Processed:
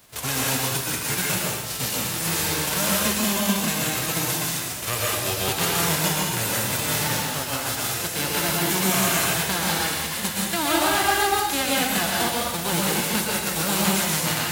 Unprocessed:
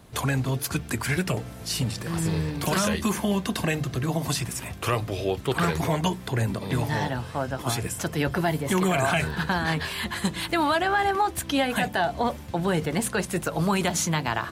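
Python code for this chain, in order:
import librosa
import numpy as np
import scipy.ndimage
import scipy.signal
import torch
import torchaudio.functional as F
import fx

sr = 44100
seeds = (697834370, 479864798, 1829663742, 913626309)

y = fx.envelope_flatten(x, sr, power=0.3)
y = fx.rev_plate(y, sr, seeds[0], rt60_s=1.1, hf_ratio=0.95, predelay_ms=105, drr_db=-4.0)
y = F.gain(torch.from_numpy(y), -3.0).numpy()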